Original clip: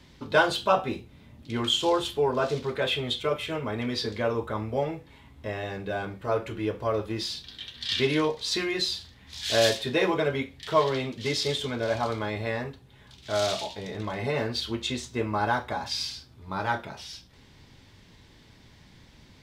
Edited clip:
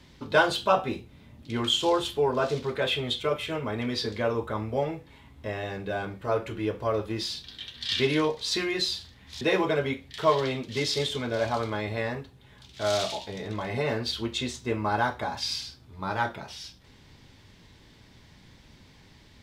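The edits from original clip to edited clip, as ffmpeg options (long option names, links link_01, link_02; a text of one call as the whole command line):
ffmpeg -i in.wav -filter_complex "[0:a]asplit=2[link_01][link_02];[link_01]atrim=end=9.412[link_03];[link_02]atrim=start=9.898[link_04];[link_03][link_04]acrossfade=duration=0.004:curve1=hsin:curve2=hsin" out.wav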